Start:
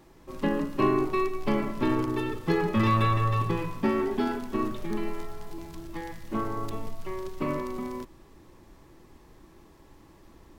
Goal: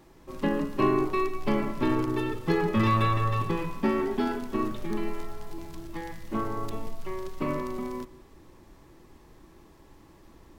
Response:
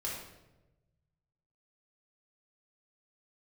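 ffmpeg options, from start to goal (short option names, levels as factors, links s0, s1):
-filter_complex "[0:a]asplit=2[s0][s1];[1:a]atrim=start_sample=2205,adelay=119[s2];[s1][s2]afir=irnorm=-1:irlink=0,volume=0.0708[s3];[s0][s3]amix=inputs=2:normalize=0"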